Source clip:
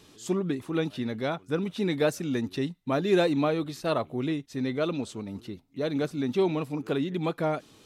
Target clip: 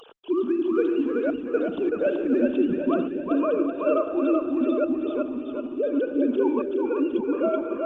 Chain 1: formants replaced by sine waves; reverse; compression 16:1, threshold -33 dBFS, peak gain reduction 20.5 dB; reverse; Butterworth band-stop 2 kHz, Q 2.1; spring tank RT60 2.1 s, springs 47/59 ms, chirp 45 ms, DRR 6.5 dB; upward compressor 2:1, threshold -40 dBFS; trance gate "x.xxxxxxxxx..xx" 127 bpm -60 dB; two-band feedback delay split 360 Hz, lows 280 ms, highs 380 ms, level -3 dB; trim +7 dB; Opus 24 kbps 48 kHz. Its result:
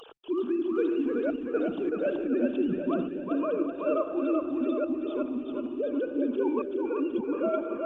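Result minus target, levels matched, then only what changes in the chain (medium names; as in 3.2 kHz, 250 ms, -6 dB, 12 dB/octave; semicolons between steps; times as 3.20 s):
compression: peak gain reduction +5.5 dB
change: compression 16:1, threshold -27 dBFS, peak gain reduction 15 dB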